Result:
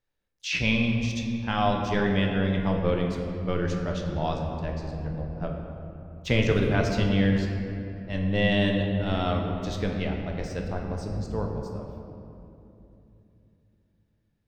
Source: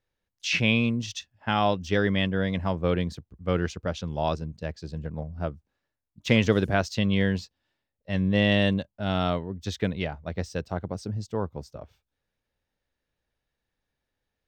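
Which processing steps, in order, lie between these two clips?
octaver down 1 oct, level -4 dB; shoebox room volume 120 m³, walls hard, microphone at 0.36 m; gain -3.5 dB

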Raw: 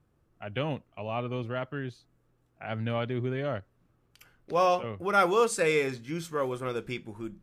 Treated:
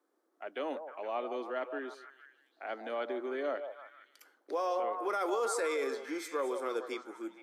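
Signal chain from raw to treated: bell 2700 Hz -10.5 dB 0.35 oct; delay with a stepping band-pass 0.155 s, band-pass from 670 Hz, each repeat 0.7 oct, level -6.5 dB; limiter -23 dBFS, peak gain reduction 12 dB; steep high-pass 280 Hz 48 dB/oct; gain -1.5 dB

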